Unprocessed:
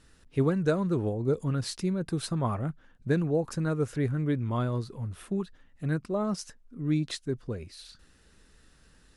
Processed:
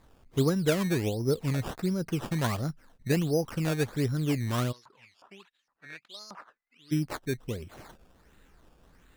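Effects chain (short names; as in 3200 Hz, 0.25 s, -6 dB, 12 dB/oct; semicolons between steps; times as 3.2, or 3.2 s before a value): decimation with a swept rate 15×, swing 100% 1.4 Hz; 4.71–6.91 LFO band-pass saw up 3.3 Hz -> 0.94 Hz 910–5400 Hz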